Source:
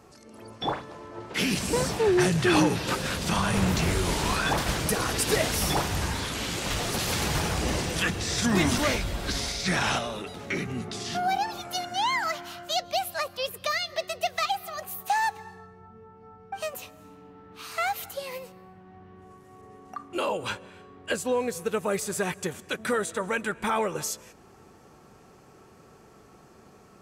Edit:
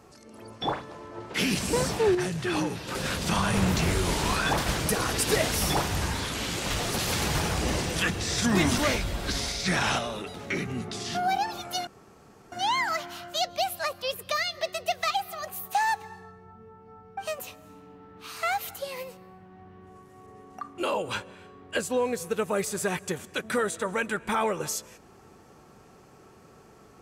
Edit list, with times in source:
2.15–2.95 gain -7 dB
11.87 insert room tone 0.65 s

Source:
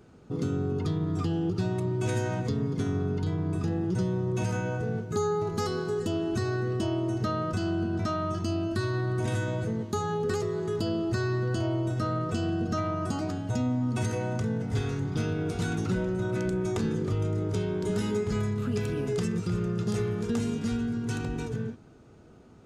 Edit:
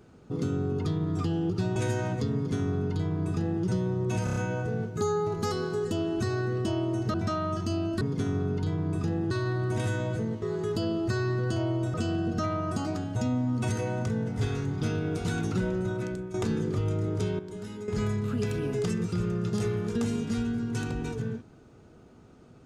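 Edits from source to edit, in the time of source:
1.76–2.03 cut
2.61–3.91 copy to 8.79
4.51 stutter 0.03 s, 5 plays
7.29–7.92 cut
9.9–10.46 cut
11.98–12.28 cut
16.17–16.68 fade out, to -12 dB
17.73–18.22 gain -10.5 dB

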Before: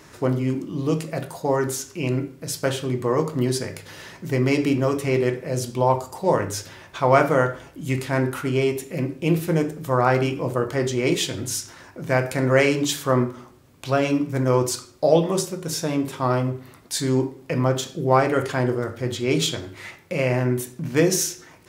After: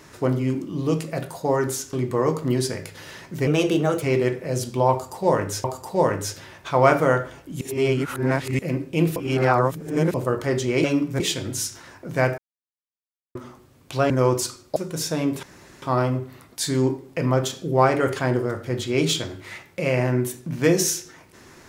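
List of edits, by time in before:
1.93–2.84 cut
4.38–5.03 speed 118%
5.93–6.65 loop, 2 plays
7.9–8.88 reverse
9.45–10.43 reverse
12.31–13.28 mute
14.03–14.39 move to 11.13
15.05–15.48 cut
16.15 insert room tone 0.39 s

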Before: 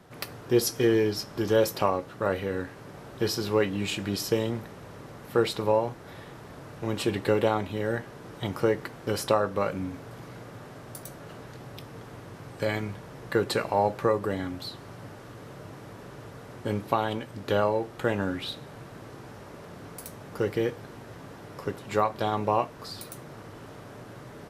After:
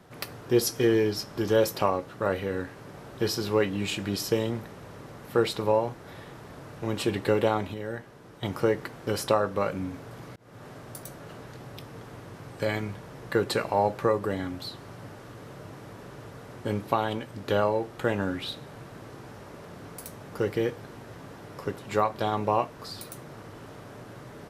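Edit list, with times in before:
7.74–8.43 gain -6 dB
10.36–10.67 fade in

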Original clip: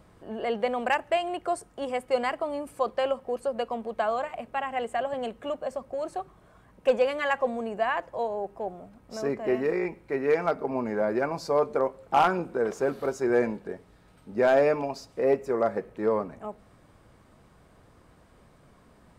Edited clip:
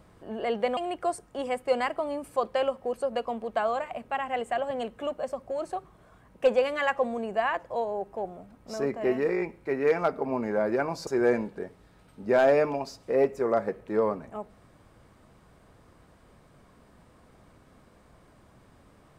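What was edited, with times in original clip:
0.77–1.2 cut
11.5–13.16 cut

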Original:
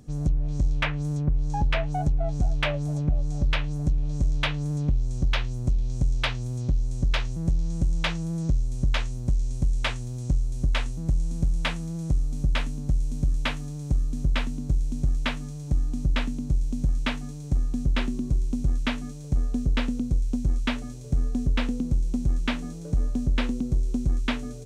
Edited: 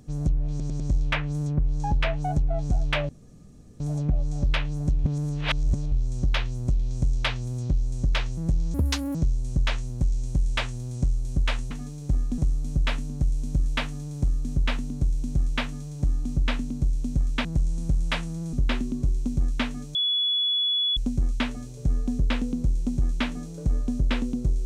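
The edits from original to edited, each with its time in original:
0.5 stutter 0.10 s, 4 plays
2.79 insert room tone 0.71 s
4.03–4.91 reverse
7.73–8.42 speed 169%
10.98–12.06 swap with 17.13–17.8
19.22–20.24 bleep 3400 Hz -21 dBFS

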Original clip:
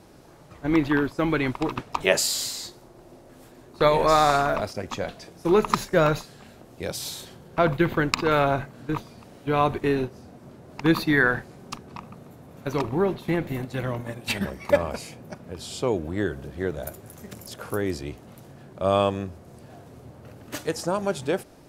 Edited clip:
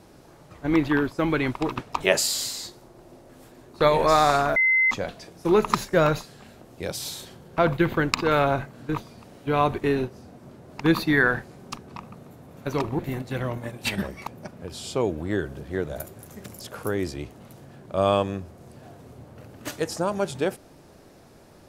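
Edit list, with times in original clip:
4.56–4.91 bleep 2060 Hz -16.5 dBFS
12.99–13.42 cut
14.7–15.14 cut

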